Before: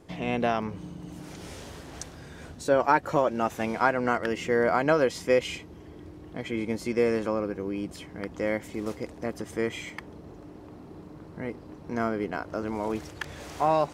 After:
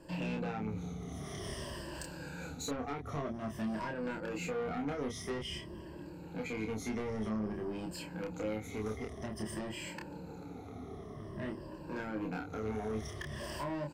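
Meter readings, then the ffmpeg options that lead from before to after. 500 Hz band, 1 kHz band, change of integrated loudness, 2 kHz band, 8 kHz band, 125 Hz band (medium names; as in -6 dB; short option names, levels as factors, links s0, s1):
-13.0 dB, -15.0 dB, -11.5 dB, -12.0 dB, -3.5 dB, -3.5 dB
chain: -filter_complex "[0:a]afftfilt=real='re*pow(10,15/40*sin(2*PI*(1.3*log(max(b,1)*sr/1024/100)/log(2)-(-0.51)*(pts-256)/sr)))':imag='im*pow(10,15/40*sin(2*PI*(1.3*log(max(b,1)*sr/1024/100)/log(2)-(-0.51)*(pts-256)/sr)))':win_size=1024:overlap=0.75,acrossover=split=320[s0][s1];[s1]acompressor=threshold=0.02:ratio=6[s2];[s0][s2]amix=inputs=2:normalize=0,asoftclip=type=tanh:threshold=0.0299,asplit=2[s3][s4];[s4]adelay=28,volume=0.708[s5];[s3][s5]amix=inputs=2:normalize=0,volume=0.668"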